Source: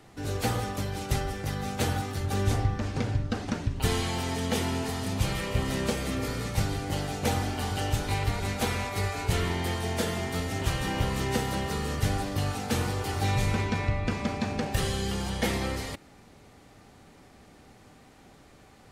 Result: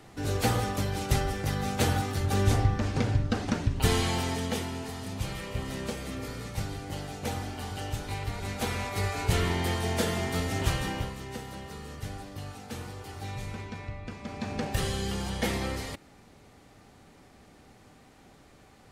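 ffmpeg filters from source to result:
-af "volume=18.5dB,afade=t=out:st=4.12:d=0.56:silence=0.398107,afade=t=in:st=8.28:d=1.03:silence=0.446684,afade=t=out:st=10.69:d=0.47:silence=0.251189,afade=t=in:st=14.22:d=0.41:silence=0.334965"

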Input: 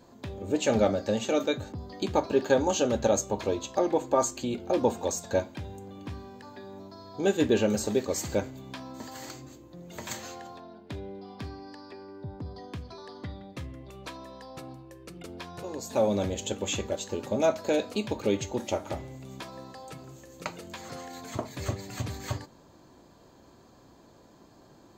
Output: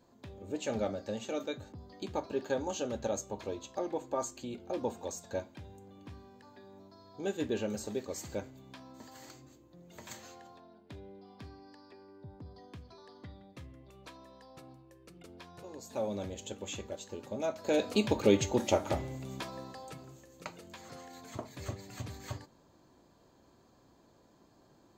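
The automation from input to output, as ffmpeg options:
-af "volume=2dB,afade=t=in:st=17.55:d=0.44:silence=0.251189,afade=t=out:st=19.13:d=1.17:silence=0.316228"

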